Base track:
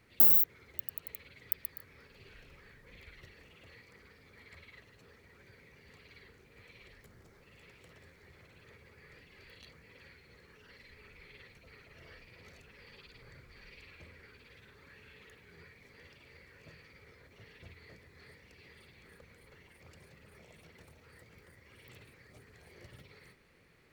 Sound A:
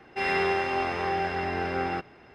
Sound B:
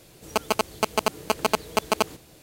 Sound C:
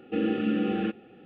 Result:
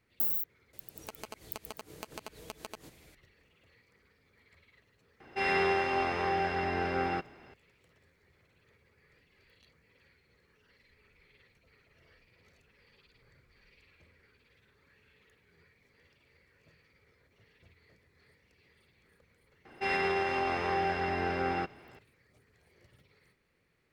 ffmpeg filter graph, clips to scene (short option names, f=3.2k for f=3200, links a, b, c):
-filter_complex "[1:a]asplit=2[a][b];[0:a]volume=-9dB[c];[2:a]acompressor=threshold=-32dB:ratio=6:attack=3.2:release=140:knee=1:detection=peak[d];[b]alimiter=limit=-18dB:level=0:latency=1:release=59[e];[d]atrim=end=2.42,asetpts=PTS-STARTPTS,volume=-9dB,afade=t=in:d=0.004:c=hsin,afade=t=out:st=2.416:d=0.004:c=hsin,adelay=730[f];[a]atrim=end=2.34,asetpts=PTS-STARTPTS,volume=-2.5dB,afade=t=in:d=0.004:c=hsin,afade=t=out:st=2.336:d=0.004:c=hsin,adelay=5200[g];[e]atrim=end=2.34,asetpts=PTS-STARTPTS,volume=-2.5dB,afade=t=in:d=0.004:c=hsin,afade=t=out:st=2.336:d=0.004:c=hsin,adelay=19650[h];[c][f][g][h]amix=inputs=4:normalize=0"